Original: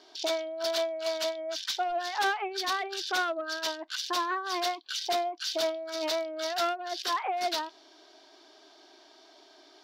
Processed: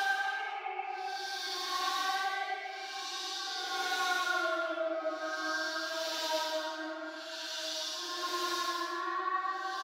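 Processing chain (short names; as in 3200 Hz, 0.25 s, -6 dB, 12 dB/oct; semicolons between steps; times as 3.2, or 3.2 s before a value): opening faded in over 2.84 s; HPF 170 Hz 12 dB/oct; split-band echo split 2100 Hz, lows 0.287 s, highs 0.497 s, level -11 dB; added harmonics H 5 -40 dB, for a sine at -19.5 dBFS; comb 6.4 ms, depth 76%; Paulstretch 4.5×, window 0.25 s, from 2.27; gain -6 dB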